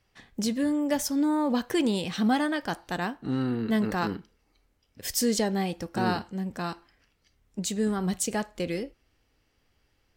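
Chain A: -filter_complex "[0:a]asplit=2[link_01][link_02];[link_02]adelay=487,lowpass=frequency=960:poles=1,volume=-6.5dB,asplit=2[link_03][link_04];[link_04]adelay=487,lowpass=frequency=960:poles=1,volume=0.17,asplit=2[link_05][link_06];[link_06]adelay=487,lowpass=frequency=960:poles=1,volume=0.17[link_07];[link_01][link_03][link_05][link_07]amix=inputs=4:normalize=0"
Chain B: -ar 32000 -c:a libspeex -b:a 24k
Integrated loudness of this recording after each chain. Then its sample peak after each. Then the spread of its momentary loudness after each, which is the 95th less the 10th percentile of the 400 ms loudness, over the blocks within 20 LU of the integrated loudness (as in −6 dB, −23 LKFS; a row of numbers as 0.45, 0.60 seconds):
−28.0, −28.0 LKFS; −12.0, −13.0 dBFS; 15, 10 LU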